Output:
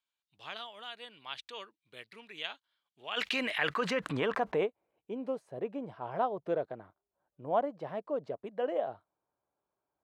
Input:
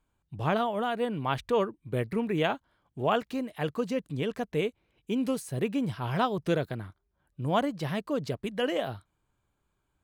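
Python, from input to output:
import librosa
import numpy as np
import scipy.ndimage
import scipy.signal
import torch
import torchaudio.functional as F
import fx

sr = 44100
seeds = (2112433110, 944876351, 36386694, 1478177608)

y = fx.filter_sweep_bandpass(x, sr, from_hz=3800.0, to_hz=650.0, start_s=2.93, end_s=4.83, q=1.7)
y = fx.env_flatten(y, sr, amount_pct=70, at=(3.16, 4.65), fade=0.02)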